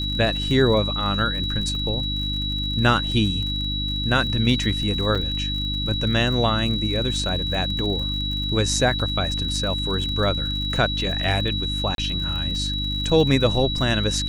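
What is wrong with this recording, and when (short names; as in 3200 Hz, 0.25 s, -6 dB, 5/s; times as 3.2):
crackle 51/s -30 dBFS
hum 50 Hz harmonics 6 -28 dBFS
tone 3900 Hz -26 dBFS
5.15–5.16 gap 5.4 ms
8.99–9 gap 5.4 ms
11.95–11.98 gap 32 ms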